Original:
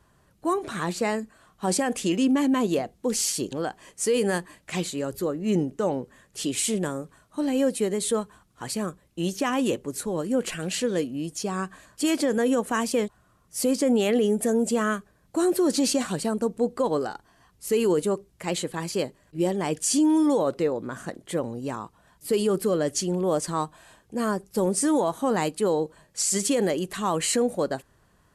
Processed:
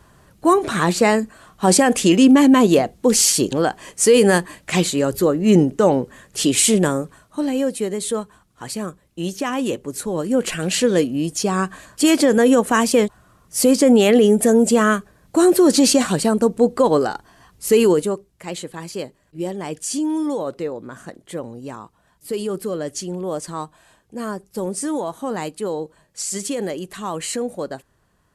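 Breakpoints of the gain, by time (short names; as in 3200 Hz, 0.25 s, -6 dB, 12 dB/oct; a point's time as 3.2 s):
6.94 s +10.5 dB
7.64 s +2 dB
9.66 s +2 dB
10.86 s +9 dB
17.82 s +9 dB
18.3 s -1.5 dB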